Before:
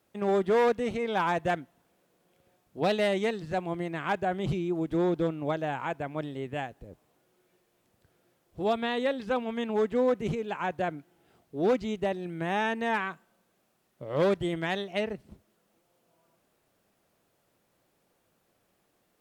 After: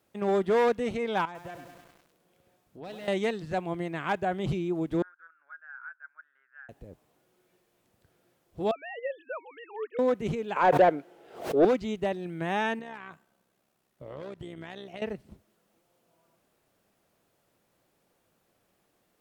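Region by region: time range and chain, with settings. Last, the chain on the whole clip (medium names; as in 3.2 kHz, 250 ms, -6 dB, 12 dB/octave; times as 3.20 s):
1.25–3.08 s: compression 2.5:1, threshold -47 dBFS + bit-crushed delay 100 ms, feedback 80%, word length 9-bit, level -6 dB
5.02–6.69 s: Butterworth band-pass 1.5 kHz, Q 5.8 + upward compressor, threshold -60 dBFS + short-mantissa float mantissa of 8-bit
8.71–9.99 s: formants replaced by sine waves + high-pass 830 Hz + distance through air 160 m
10.56–11.65 s: peaking EQ 480 Hz +13 dB 1.2 oct + overdrive pedal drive 13 dB, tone 4.1 kHz, clips at -10.5 dBFS + swell ahead of each attack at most 110 dB/s
12.79–15.02 s: compression 12:1, threshold -35 dBFS + AM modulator 66 Hz, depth 40%
whole clip: none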